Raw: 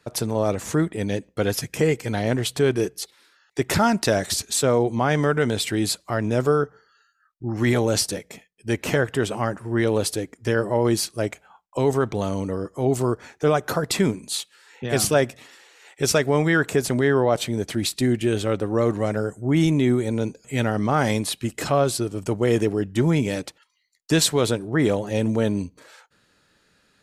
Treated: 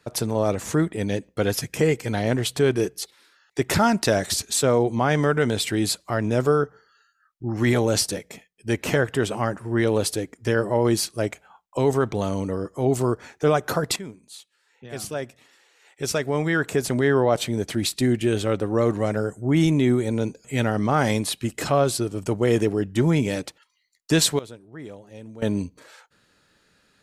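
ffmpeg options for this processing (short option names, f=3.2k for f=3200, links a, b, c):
-filter_complex "[0:a]asplit=4[a][b][c][d];[a]atrim=end=13.96,asetpts=PTS-STARTPTS,afade=t=out:st=13.956:d=0.004:c=hsin:silence=0.158489[e];[b]atrim=start=13.96:end=24.39,asetpts=PTS-STARTPTS,afade=t=in:d=3.19:c=qua:silence=0.158489,afade=t=out:st=10.28:d=0.15:c=log:silence=0.11885[f];[c]atrim=start=24.39:end=25.42,asetpts=PTS-STARTPTS,volume=-18.5dB[g];[d]atrim=start=25.42,asetpts=PTS-STARTPTS,afade=t=in:d=0.15:c=log:silence=0.11885[h];[e][f][g][h]concat=n=4:v=0:a=1"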